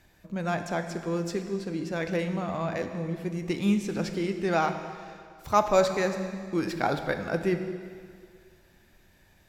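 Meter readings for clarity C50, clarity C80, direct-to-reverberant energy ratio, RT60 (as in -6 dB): 8.0 dB, 9.5 dB, 6.5 dB, 2.1 s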